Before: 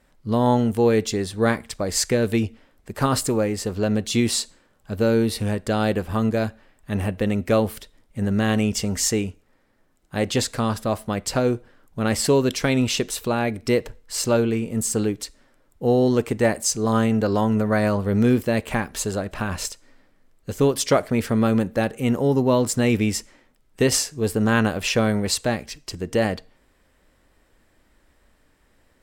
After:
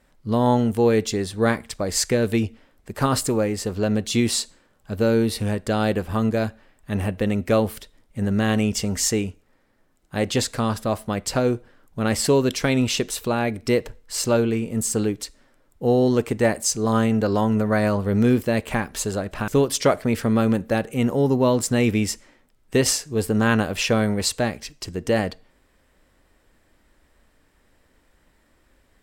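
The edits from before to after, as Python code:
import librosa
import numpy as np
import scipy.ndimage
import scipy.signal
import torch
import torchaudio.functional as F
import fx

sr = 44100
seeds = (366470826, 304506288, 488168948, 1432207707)

y = fx.edit(x, sr, fx.cut(start_s=19.48, length_s=1.06), tone=tone)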